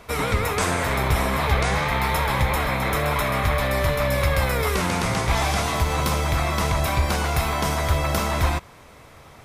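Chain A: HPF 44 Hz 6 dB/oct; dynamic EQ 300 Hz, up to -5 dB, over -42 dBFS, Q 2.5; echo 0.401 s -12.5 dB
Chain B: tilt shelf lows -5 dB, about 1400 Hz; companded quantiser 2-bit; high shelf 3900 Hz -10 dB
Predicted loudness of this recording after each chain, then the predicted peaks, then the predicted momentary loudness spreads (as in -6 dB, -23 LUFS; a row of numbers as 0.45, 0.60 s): -23.0, -26.5 LUFS; -9.5, -1.5 dBFS; 2, 1 LU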